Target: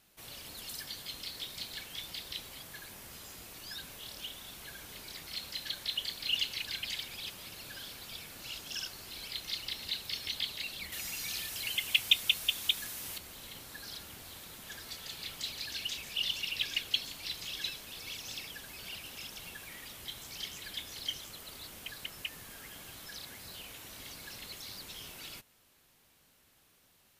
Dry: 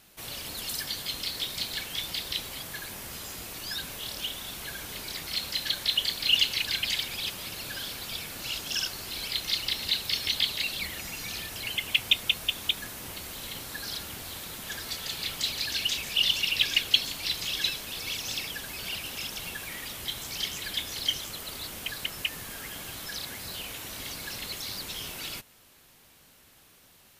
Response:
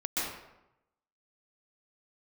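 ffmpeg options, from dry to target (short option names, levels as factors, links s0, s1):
-filter_complex "[0:a]asettb=1/sr,asplit=3[s0][s1][s2];[s0]atrim=end=10.924[s3];[s1]atrim=start=10.92:end=13.18,asetpts=PTS-STARTPTS,afade=t=in:d=0.004:c=qsin,afade=t=out:st=2.256:d=0.004:c=qsin,highshelf=f=2000:g=9.5[s4];[s2]atrim=start=13.176[s5];[s3][s4]acrossfade=d=0.004:c1=hsin:c2=qsin[s6];[s6][s5]acrossfade=d=0.004:c1=qsin:c2=hsin,volume=0.355"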